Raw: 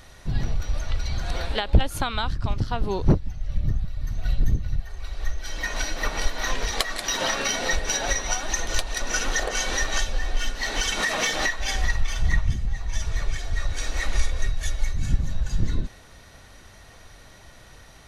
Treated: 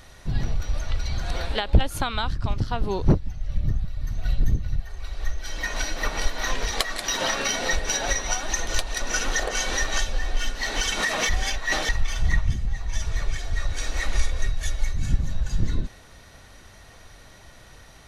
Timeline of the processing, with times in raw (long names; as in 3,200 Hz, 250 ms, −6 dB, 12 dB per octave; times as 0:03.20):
0:11.29–0:11.89: reverse